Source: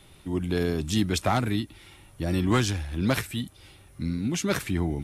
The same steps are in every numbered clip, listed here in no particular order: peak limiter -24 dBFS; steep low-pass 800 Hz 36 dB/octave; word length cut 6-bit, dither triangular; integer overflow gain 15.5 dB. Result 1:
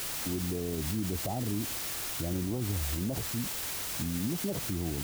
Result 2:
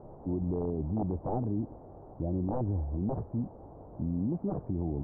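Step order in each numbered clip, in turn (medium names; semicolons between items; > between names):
steep low-pass > word length cut > peak limiter > integer overflow; word length cut > integer overflow > steep low-pass > peak limiter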